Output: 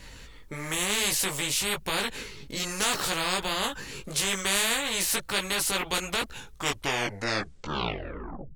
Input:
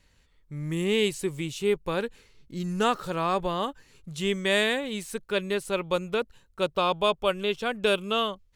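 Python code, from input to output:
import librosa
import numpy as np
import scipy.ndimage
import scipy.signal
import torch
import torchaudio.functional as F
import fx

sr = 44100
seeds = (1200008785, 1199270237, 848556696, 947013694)

y = fx.tape_stop_end(x, sr, length_s=2.3)
y = fx.chorus_voices(y, sr, voices=6, hz=1.0, base_ms=18, depth_ms=3.7, mix_pct=45)
y = fx.spectral_comp(y, sr, ratio=4.0)
y = F.gain(torch.from_numpy(y), 2.5).numpy()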